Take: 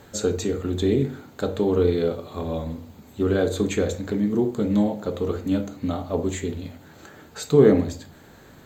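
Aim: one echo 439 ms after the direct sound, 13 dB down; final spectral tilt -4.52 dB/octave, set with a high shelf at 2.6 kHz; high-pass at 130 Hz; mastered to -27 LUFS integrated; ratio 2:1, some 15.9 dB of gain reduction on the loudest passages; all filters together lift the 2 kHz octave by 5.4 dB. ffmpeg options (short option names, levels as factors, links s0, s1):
-af "highpass=130,equalizer=f=2000:t=o:g=4.5,highshelf=f=2600:g=6,acompressor=threshold=0.01:ratio=2,aecho=1:1:439:0.224,volume=2.66"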